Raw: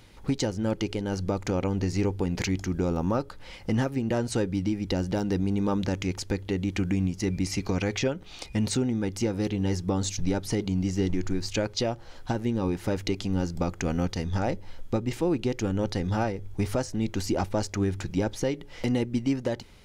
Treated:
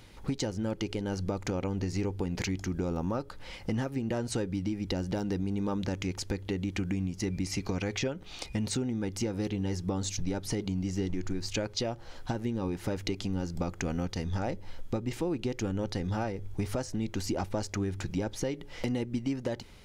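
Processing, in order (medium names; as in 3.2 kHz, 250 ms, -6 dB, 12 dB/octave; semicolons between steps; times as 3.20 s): compression 2.5:1, threshold -30 dBFS, peak gain reduction 6.5 dB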